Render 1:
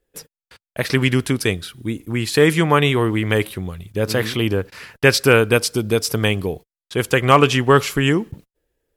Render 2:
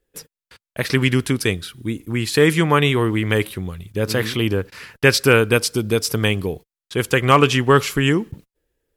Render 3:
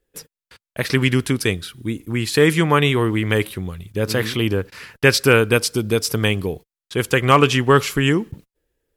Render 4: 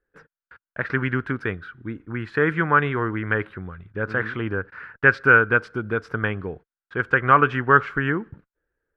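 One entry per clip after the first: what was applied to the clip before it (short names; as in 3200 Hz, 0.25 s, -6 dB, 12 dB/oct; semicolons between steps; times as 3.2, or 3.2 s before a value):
bell 680 Hz -3.5 dB 0.73 oct
nothing audible
synth low-pass 1500 Hz, resonance Q 5.6; gain -7.5 dB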